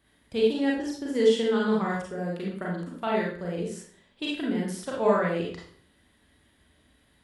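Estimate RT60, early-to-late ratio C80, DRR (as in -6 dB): 0.55 s, 7.0 dB, -4.0 dB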